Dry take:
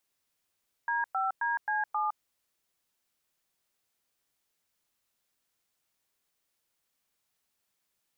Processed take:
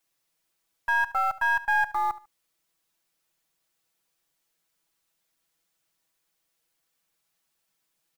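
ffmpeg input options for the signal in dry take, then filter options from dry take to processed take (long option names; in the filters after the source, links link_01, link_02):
-f lavfi -i "aevalsrc='0.0335*clip(min(mod(t,0.266),0.161-mod(t,0.266))/0.002,0,1)*(eq(floor(t/0.266),0)*(sin(2*PI*941*mod(t,0.266))+sin(2*PI*1633*mod(t,0.266)))+eq(floor(t/0.266),1)*(sin(2*PI*770*mod(t,0.266))+sin(2*PI*1336*mod(t,0.266)))+eq(floor(t/0.266),2)*(sin(2*PI*941*mod(t,0.266))+sin(2*PI*1633*mod(t,0.266)))+eq(floor(t/0.266),3)*(sin(2*PI*852*mod(t,0.266))+sin(2*PI*1633*mod(t,0.266)))+eq(floor(t/0.266),4)*(sin(2*PI*852*mod(t,0.266))+sin(2*PI*1209*mod(t,0.266))))':duration=1.33:sample_rate=44100"
-filter_complex "[0:a]aecho=1:1:6.1:0.93,asplit=2[link_01][link_02];[link_02]acrusher=bits=4:dc=4:mix=0:aa=0.000001,volume=-5dB[link_03];[link_01][link_03]amix=inputs=2:normalize=0,aecho=1:1:73|146:0.133|0.0347"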